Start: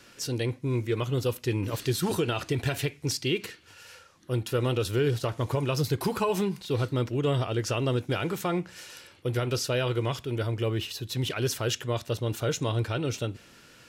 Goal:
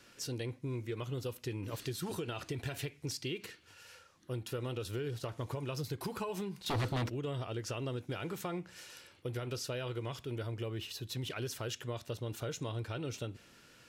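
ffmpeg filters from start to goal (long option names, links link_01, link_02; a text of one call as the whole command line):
ffmpeg -i in.wav -filter_complex "[0:a]acompressor=threshold=-29dB:ratio=4,asettb=1/sr,asplit=3[link_01][link_02][link_03];[link_01]atrim=end=6.664[link_04];[link_02]atrim=start=6.66:end=7.1,asetpts=PTS-STARTPTS,afade=type=in:duration=0.004:curve=qsin,afade=type=out:start_time=0.436:duration=0.004:curve=qsin,aeval=exprs='0.0708*sin(PI/2*2.51*val(0)/0.0708)':channel_layout=same[link_05];[link_03]atrim=start=7.096[link_06];[link_04][link_05]acrossfade=duration=0.004:curve1=hsin:curve2=qsin[link_07];[link_07][link_06]acrossfade=duration=0.004:curve1=qsin:curve2=hsin,volume=-6.5dB" out.wav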